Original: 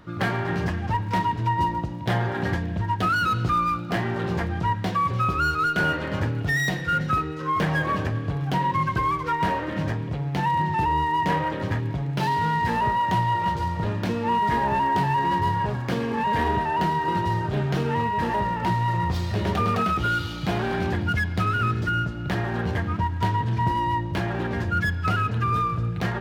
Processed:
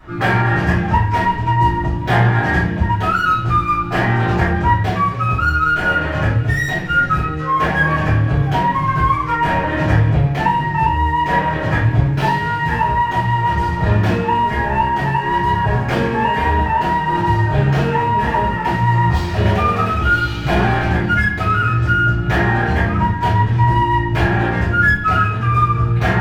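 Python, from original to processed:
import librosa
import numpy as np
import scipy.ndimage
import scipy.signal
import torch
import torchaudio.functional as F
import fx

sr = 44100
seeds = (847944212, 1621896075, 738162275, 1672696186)

y = fx.curve_eq(x, sr, hz=(470.0, 1900.0, 3900.0), db=(0, 5, -1))
y = fx.rider(y, sr, range_db=10, speed_s=0.5)
y = fx.room_shoebox(y, sr, seeds[0], volume_m3=52.0, walls='mixed', distance_m=3.0)
y = y * librosa.db_to_amplitude(-7.5)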